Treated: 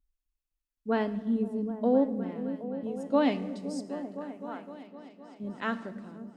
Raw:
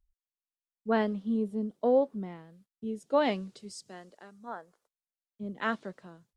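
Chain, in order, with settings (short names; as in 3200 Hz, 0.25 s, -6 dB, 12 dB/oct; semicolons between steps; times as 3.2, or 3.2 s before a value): small resonant body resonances 270/2600 Hz, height 9 dB; on a send: repeats that get brighter 0.257 s, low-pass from 200 Hz, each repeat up 1 oct, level -6 dB; on the sum: shoebox room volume 1200 m³, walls mixed, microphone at 0.4 m; gain -2 dB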